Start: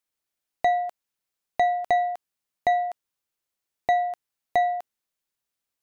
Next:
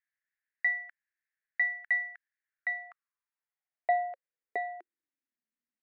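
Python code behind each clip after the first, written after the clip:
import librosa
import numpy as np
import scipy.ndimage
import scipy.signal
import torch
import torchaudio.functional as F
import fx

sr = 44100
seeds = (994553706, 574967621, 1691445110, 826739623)

y = fx.curve_eq(x, sr, hz=(230.0, 920.0, 1900.0, 3400.0), db=(0, -10, 6, -11))
y = fx.filter_sweep_highpass(y, sr, from_hz=1700.0, to_hz=230.0, start_s=2.41, end_s=5.47, q=5.8)
y = fx.air_absorb(y, sr, metres=160.0)
y = F.gain(torch.from_numpy(y), -8.5).numpy()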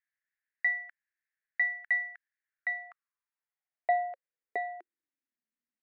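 y = x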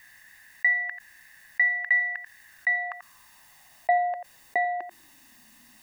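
y = x + 0.69 * np.pad(x, (int(1.1 * sr / 1000.0), 0))[:len(x)]
y = y + 10.0 ** (-20.0 / 20.0) * np.pad(y, (int(88 * sr / 1000.0), 0))[:len(y)]
y = fx.env_flatten(y, sr, amount_pct=50)
y = F.gain(torch.from_numpy(y), 1.5).numpy()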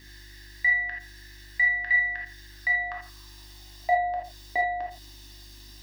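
y = fx.dmg_buzz(x, sr, base_hz=50.0, harmonics=7, level_db=-49.0, tilt_db=-5, odd_only=False)
y = fx.band_shelf(y, sr, hz=4200.0, db=12.0, octaves=1.1)
y = fx.rev_gated(y, sr, seeds[0], gate_ms=100, shape='flat', drr_db=-1.5)
y = F.gain(torch.from_numpy(y), -3.5).numpy()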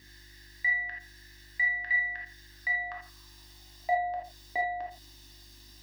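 y = scipy.signal.sosfilt(scipy.signal.butter(2, 49.0, 'highpass', fs=sr, output='sos'), x)
y = F.gain(torch.from_numpy(y), -4.5).numpy()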